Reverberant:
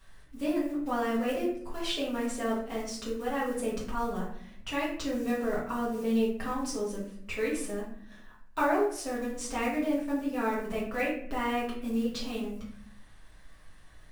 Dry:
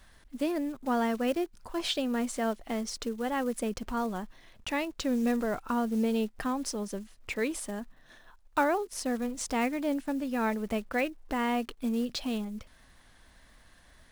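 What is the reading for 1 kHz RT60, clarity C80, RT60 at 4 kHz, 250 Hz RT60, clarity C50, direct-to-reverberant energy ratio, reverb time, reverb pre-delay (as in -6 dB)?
0.55 s, 8.5 dB, 0.40 s, 1.0 s, 4.5 dB, -7.5 dB, 0.65 s, 4 ms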